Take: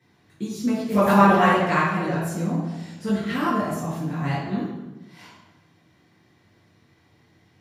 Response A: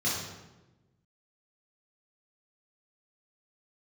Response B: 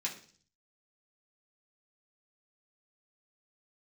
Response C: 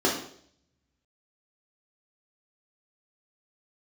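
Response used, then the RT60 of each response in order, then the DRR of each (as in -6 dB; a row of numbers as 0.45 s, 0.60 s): A; 1.1 s, 0.45 s, 0.60 s; -8.0 dB, -4.0 dB, -4.0 dB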